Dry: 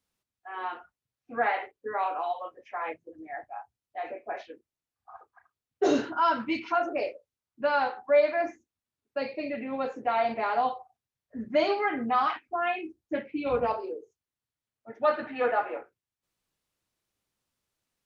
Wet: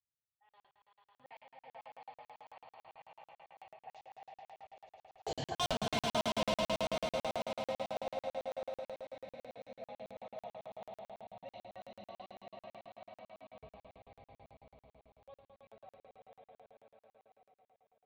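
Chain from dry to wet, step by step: Doppler pass-by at 5.69, 34 m/s, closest 3.5 m; overloaded stage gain 30.5 dB; HPF 64 Hz; tilt -2 dB/oct; in parallel at -1.5 dB: negative-ratio compressor -42 dBFS, ratio -1; on the sum: EQ curve 150 Hz 0 dB, 320 Hz -24 dB, 690 Hz -4 dB, 1400 Hz -20 dB, 2900 Hz +1 dB; on a send: swelling echo 0.102 s, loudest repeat 5, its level -5.5 dB; on the sum: crackling interface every 0.11 s, samples 2048, zero, from 0.49; gain +7.5 dB

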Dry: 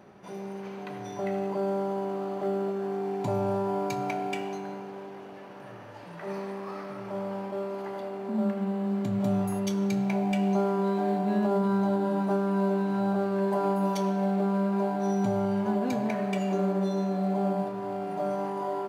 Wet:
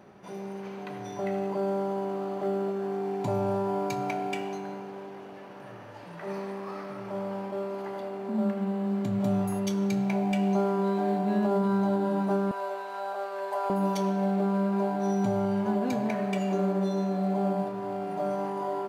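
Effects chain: 12.51–13.7 HPF 530 Hz 24 dB/oct

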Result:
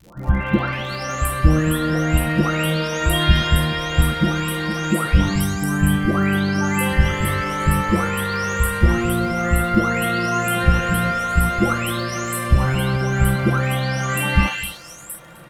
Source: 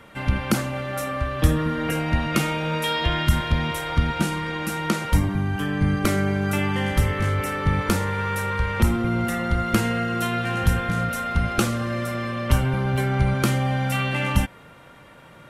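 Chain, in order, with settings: spectral delay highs late, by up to 0.737 s; crackle 77/s -40 dBFS; echo 0.257 s -20.5 dB; gain +6 dB

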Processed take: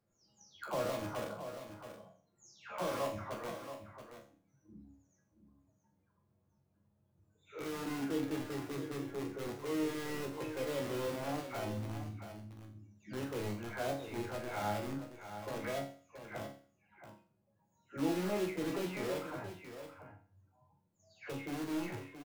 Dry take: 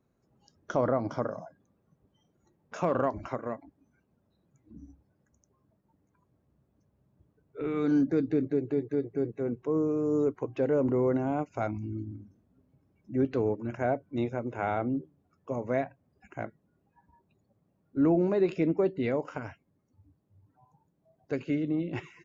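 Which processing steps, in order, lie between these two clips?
spectral delay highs early, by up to 0.391 s; in parallel at -5 dB: wrapped overs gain 28.5 dB; on the sum: resonator bank C#2 sus4, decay 0.44 s; echo 0.676 s -10 dB; gain +5 dB

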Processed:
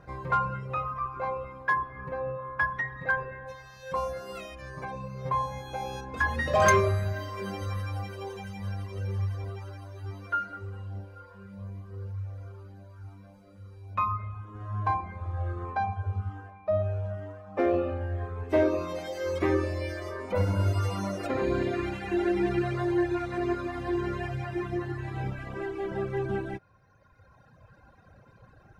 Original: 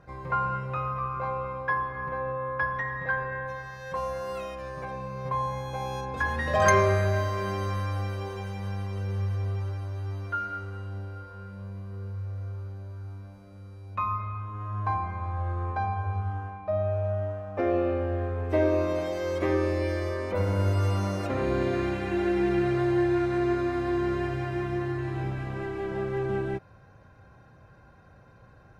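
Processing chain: reverb removal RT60 2 s; in parallel at -10.5 dB: wavefolder -20 dBFS

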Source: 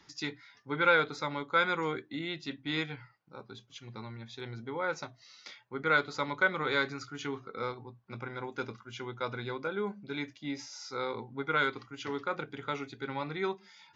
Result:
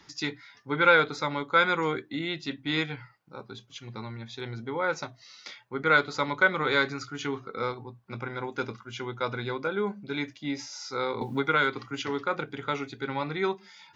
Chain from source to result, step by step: 11.21–12.02 three-band squash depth 70%; gain +5 dB

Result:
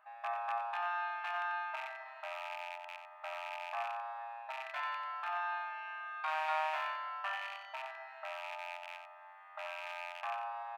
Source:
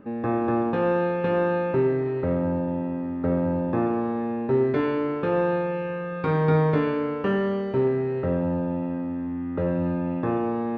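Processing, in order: rattling part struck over -27 dBFS, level -27 dBFS; brick-wall FIR high-pass 610 Hz; echo 91 ms -8.5 dB; gain -6 dB

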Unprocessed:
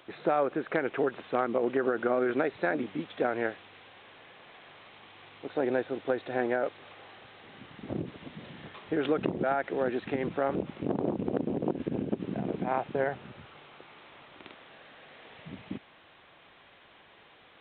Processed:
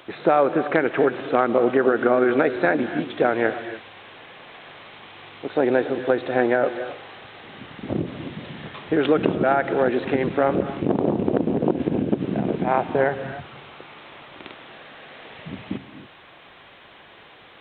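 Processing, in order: non-linear reverb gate 0.31 s rising, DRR 11 dB; gain +9 dB

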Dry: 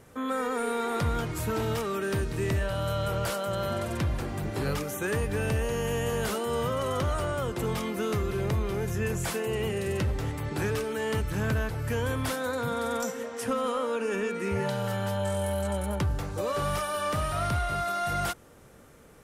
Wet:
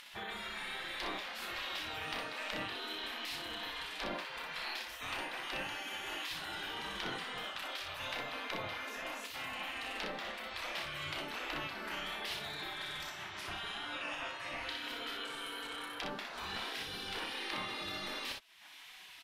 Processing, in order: spectral gate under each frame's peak -20 dB weak; upward compressor, threshold -38 dBFS; resonant high shelf 5400 Hz -12 dB, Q 1.5; on a send: early reflections 32 ms -6.5 dB, 61 ms -4.5 dB; on the sum: gain -1.5 dB

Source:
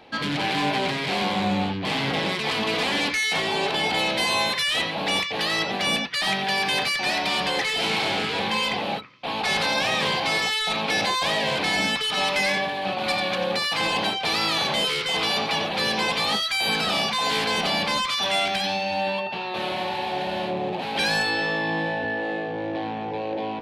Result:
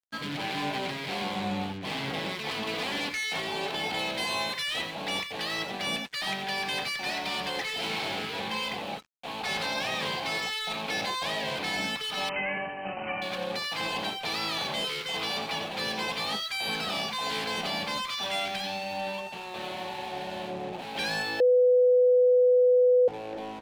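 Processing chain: crossover distortion -40 dBFS; 12.29–13.22 brick-wall FIR low-pass 3100 Hz; 21.4–23.08 bleep 498 Hz -10.5 dBFS; gain -6.5 dB

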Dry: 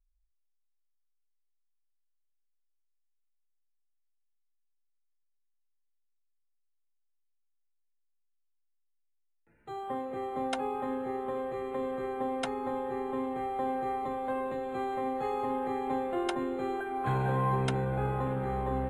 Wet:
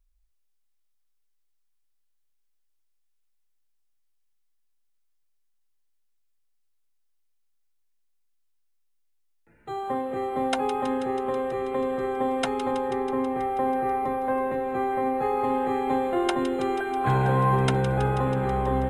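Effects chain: 12.71–15.44 band shelf 4900 Hz -8 dB; thin delay 0.162 s, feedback 74%, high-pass 2000 Hz, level -9 dB; gain +7 dB

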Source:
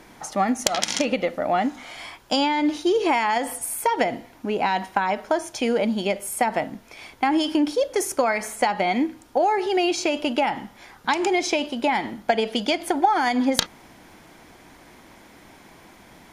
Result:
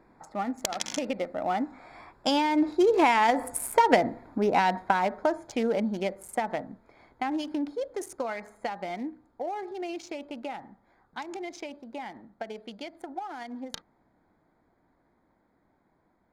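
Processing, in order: Wiener smoothing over 15 samples; Doppler pass-by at 3.79, 9 m/s, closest 9.2 m; gain +2 dB

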